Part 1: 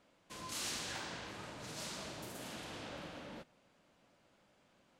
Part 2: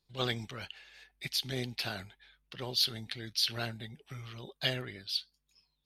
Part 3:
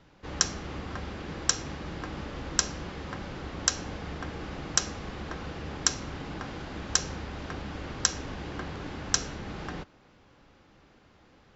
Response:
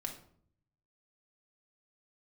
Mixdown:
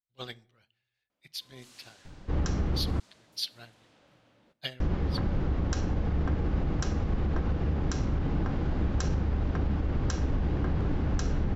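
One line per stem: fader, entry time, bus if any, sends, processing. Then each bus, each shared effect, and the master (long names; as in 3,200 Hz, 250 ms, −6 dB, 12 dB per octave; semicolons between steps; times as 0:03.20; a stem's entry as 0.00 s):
−17.0 dB, 1.10 s, send −14 dB, no processing
−0.5 dB, 0.00 s, send −13.5 dB, expander for the loud parts 2.5 to 1, over −45 dBFS
+1.0 dB, 2.05 s, muted 0:03.00–0:04.80, no send, spectral tilt −3.5 dB per octave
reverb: on, RT60 0.60 s, pre-delay 4 ms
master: brickwall limiter −19.5 dBFS, peak gain reduction 10 dB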